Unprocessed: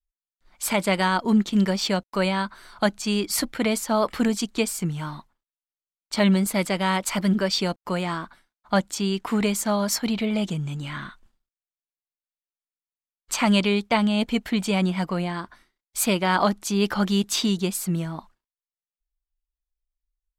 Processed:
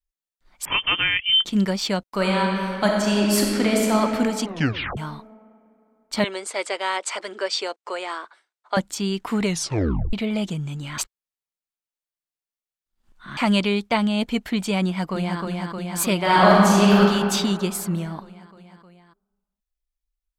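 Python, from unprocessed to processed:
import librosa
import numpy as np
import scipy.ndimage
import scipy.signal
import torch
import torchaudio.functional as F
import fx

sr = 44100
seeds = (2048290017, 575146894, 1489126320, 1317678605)

y = fx.freq_invert(x, sr, carrier_hz=3300, at=(0.65, 1.45))
y = fx.reverb_throw(y, sr, start_s=2.12, length_s=1.83, rt60_s=2.9, drr_db=-1.5)
y = fx.ellip_bandpass(y, sr, low_hz=400.0, high_hz=8600.0, order=3, stop_db=40, at=(6.24, 8.77))
y = fx.echo_throw(y, sr, start_s=14.84, length_s=0.57, ms=310, feedback_pct=80, wet_db=-3.5)
y = fx.reverb_throw(y, sr, start_s=16.22, length_s=0.78, rt60_s=2.2, drr_db=-6.5)
y = fx.edit(y, sr, fx.tape_stop(start_s=4.45, length_s=0.52),
    fx.tape_stop(start_s=9.44, length_s=0.69),
    fx.reverse_span(start_s=10.98, length_s=2.39), tone=tone)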